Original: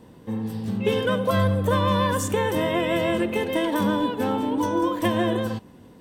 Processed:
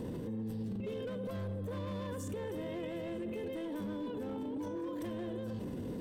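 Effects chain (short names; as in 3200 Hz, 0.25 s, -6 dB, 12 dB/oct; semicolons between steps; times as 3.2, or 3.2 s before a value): hard clip -19 dBFS, distortion -14 dB; resonant low shelf 620 Hz +6.5 dB, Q 1.5; limiter -43.5 dBFS, peak gain reduction 34.5 dB; gain +10 dB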